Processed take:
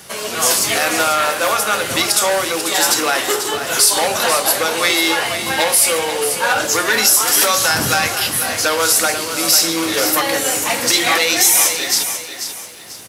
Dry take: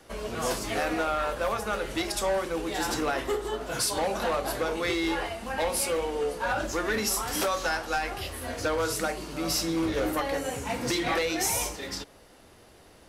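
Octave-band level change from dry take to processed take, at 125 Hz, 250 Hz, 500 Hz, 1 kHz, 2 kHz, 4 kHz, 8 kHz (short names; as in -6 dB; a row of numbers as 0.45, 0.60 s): +5.5, +6.5, +8.5, +11.5, +14.5, +17.5, +19.0 dB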